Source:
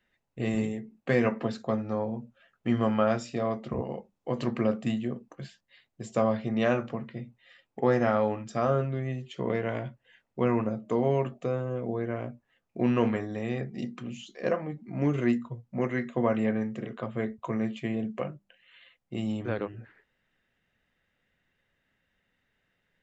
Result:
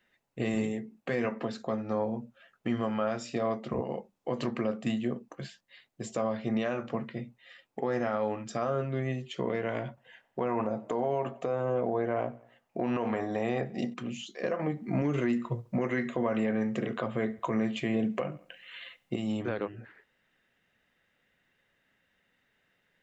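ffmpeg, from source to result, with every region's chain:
-filter_complex "[0:a]asettb=1/sr,asplit=3[a][b][c];[a]atrim=end=9.884[d];[b]atrim=start=9.88:end=13.94,asetpts=PTS-STARTPTS,afade=t=in:d=0.004:c=qsin,afade=t=out:st=4.056:d=0.004:c=qsin,equalizer=f=770:t=o:w=1.2:g=9.5,acompressor=threshold=-24dB:ratio=3:attack=3.2:release=140:knee=1:detection=peak,aecho=1:1:93|186|279:0.0708|0.0326|0.015,atrim=end_sample=179046[e];[c]atrim=start=13.936[f];[d][e]acrossfade=d=0.004:c1=hsin:c2=qsin[g];[g][f]acrossfade=d=0.004:c1=qsin:c2=hsin,asettb=1/sr,asplit=3[h][i][j];[h]atrim=end=14.594[k];[i]atrim=start=14.59:end=19.16,asetpts=PTS-STARTPTS,afade=t=in:d=0.004:c=qsin,afade=t=out:st=4.566:d=0.004:c=qsin,acontrast=87,aecho=1:1:70|140|210:0.0708|0.0276|0.0108,atrim=end_sample=201537[l];[j]atrim=start=19.156[m];[k][l]acrossfade=d=0.004:c1=hsin:c2=qsin[n];[n][m]acrossfade=d=0.004:c1=qsin:c2=hsin,lowshelf=f=110:g=-11,alimiter=limit=-23.5dB:level=0:latency=1:release=253,volume=3.5dB"

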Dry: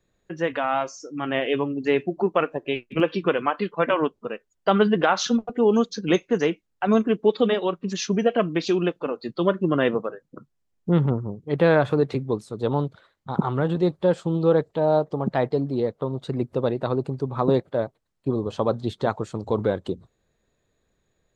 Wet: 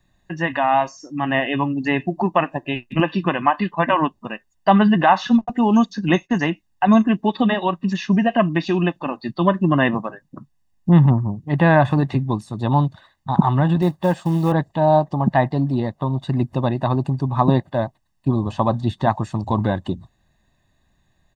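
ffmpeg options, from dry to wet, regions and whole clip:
-filter_complex "[0:a]asettb=1/sr,asplit=3[a][b][c];[a]atrim=end=5.414[d];[b]atrim=start=5.41:end=6.5,asetpts=PTS-STARTPTS,afade=t=in:d=0.004:c=qsin,afade=t=out:st=1.086:d=0.004:c=qsin,agate=range=-33dB:threshold=-45dB:ratio=3:release=100:detection=peak,equalizer=f=6k:w=1.5:g=4[e];[c]atrim=start=6.496[f];[d][e]acrossfade=d=0.004:c1=hsin:c2=qsin[g];[g][f]acrossfade=d=0.004:c1=qsin:c2=hsin,asettb=1/sr,asplit=3[h][i][j];[h]atrim=end=13.824[k];[i]atrim=start=13.82:end=14.52,asetpts=PTS-STARTPTS,afade=t=in:d=0.004:c=qsin,afade=t=out:st=0.696:d=0.004:c=qsin,lowshelf=f=91:g=-9.5,acrusher=bits=6:mode=log:mix=0:aa=0.000001[l];[j]atrim=start=14.516[m];[k][l]acrossfade=d=0.004:c1=hsin:c2=qsin[n];[n][m]acrossfade=d=0.004:c1=qsin:c2=hsin,acrossover=split=2900[o][p];[p]acompressor=threshold=-49dB:ratio=4:attack=1:release=60[q];[o][q]amix=inputs=2:normalize=0,aecho=1:1:1.1:0.85,volume=4.5dB"

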